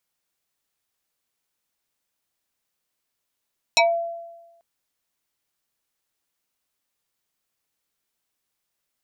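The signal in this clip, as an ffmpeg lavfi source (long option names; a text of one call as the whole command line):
ffmpeg -f lavfi -i "aevalsrc='0.266*pow(10,-3*t/1.13)*sin(2*PI*677*t+4.2*pow(10,-3*t/0.2)*sin(2*PI*2.38*677*t))':duration=0.84:sample_rate=44100" out.wav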